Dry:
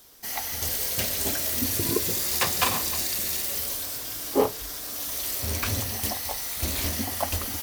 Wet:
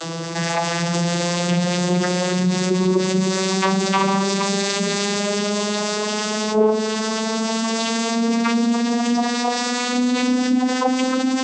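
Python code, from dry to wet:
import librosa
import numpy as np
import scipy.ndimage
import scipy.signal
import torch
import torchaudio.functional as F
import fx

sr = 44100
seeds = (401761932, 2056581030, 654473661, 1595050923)

y = fx.vocoder_glide(x, sr, note=52, semitones=8)
y = fx.low_shelf(y, sr, hz=130.0, db=11.0)
y = fx.stretch_vocoder(y, sr, factor=1.5)
y = fx.peak_eq(y, sr, hz=1100.0, db=3.5, octaves=0.47)
y = fx.hum_notches(y, sr, base_hz=50, count=4)
y = fx.env_flatten(y, sr, amount_pct=70)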